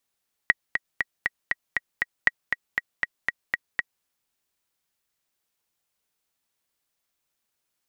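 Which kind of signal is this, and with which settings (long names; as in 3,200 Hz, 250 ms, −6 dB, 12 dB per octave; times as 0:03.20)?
click track 237 BPM, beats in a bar 7, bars 2, 1,910 Hz, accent 6.5 dB −3.5 dBFS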